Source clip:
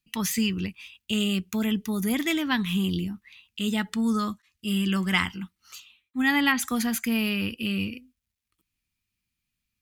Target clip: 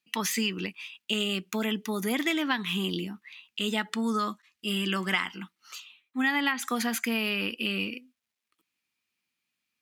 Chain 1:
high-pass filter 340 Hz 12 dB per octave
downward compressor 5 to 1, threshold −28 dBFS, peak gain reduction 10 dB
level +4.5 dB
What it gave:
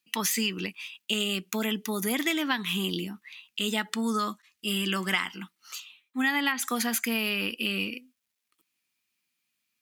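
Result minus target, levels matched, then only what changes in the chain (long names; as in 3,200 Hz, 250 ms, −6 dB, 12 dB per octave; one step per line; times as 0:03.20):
8,000 Hz band +3.5 dB
add after high-pass filter: high-shelf EQ 6,000 Hz −8.5 dB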